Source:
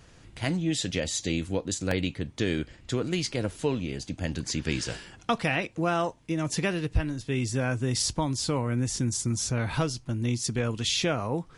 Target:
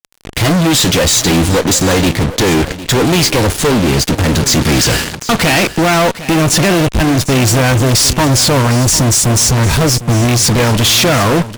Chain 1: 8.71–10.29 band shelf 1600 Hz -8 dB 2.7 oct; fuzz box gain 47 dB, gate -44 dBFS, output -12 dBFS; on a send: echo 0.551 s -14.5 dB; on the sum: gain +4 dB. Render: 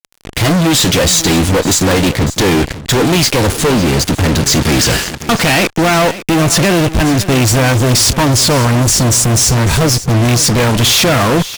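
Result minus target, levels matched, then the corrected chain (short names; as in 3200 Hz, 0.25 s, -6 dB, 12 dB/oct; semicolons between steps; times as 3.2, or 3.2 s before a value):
echo 0.203 s early
8.71–10.29 band shelf 1600 Hz -8 dB 2.7 oct; fuzz box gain 47 dB, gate -44 dBFS, output -12 dBFS; on a send: echo 0.754 s -14.5 dB; on the sum: gain +4 dB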